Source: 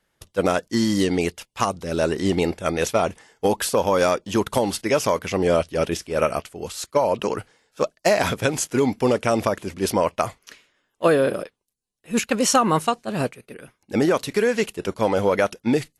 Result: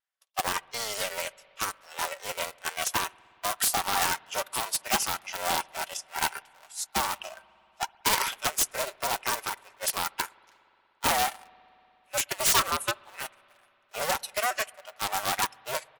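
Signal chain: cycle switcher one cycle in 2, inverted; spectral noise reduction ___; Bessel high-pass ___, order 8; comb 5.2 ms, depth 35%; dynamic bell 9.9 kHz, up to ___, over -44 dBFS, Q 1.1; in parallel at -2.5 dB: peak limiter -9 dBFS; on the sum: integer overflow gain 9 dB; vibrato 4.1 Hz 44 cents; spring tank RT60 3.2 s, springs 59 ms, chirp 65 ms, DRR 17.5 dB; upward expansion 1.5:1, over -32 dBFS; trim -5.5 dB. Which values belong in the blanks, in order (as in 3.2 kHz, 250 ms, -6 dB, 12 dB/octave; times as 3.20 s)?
10 dB, 890 Hz, +6 dB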